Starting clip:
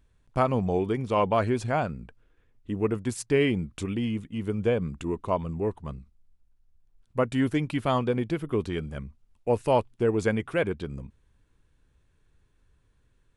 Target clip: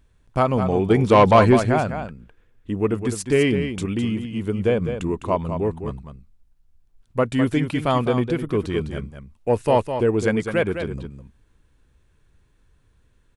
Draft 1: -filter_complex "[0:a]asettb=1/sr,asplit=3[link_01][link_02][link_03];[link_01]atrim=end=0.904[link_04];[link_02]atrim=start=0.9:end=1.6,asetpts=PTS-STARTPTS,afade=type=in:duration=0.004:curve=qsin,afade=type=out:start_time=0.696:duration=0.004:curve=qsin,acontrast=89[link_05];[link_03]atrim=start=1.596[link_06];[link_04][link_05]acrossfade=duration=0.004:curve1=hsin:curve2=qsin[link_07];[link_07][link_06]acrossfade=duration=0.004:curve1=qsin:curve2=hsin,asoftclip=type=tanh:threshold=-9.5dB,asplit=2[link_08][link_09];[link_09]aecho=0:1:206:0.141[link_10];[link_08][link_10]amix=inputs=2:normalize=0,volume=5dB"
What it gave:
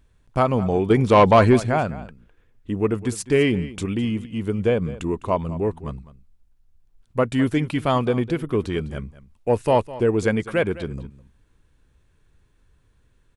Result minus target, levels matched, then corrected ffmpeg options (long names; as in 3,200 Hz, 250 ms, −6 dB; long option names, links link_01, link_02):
echo-to-direct −8.5 dB
-filter_complex "[0:a]asettb=1/sr,asplit=3[link_01][link_02][link_03];[link_01]atrim=end=0.904[link_04];[link_02]atrim=start=0.9:end=1.6,asetpts=PTS-STARTPTS,afade=type=in:duration=0.004:curve=qsin,afade=type=out:start_time=0.696:duration=0.004:curve=qsin,acontrast=89[link_05];[link_03]atrim=start=1.596[link_06];[link_04][link_05]acrossfade=duration=0.004:curve1=hsin:curve2=qsin[link_07];[link_07][link_06]acrossfade=duration=0.004:curve1=qsin:curve2=hsin,asoftclip=type=tanh:threshold=-9.5dB,asplit=2[link_08][link_09];[link_09]aecho=0:1:206:0.376[link_10];[link_08][link_10]amix=inputs=2:normalize=0,volume=5dB"